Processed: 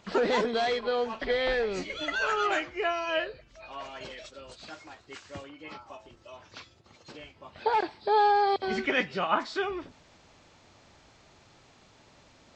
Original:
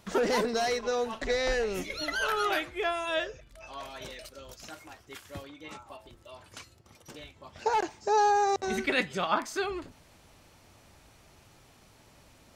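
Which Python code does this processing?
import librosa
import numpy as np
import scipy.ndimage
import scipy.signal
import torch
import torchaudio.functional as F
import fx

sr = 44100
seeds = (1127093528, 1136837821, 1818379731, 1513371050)

y = fx.freq_compress(x, sr, knee_hz=2200.0, ratio=1.5)
y = fx.low_shelf(y, sr, hz=110.0, db=-7.5)
y = y * 10.0 ** (1.5 / 20.0)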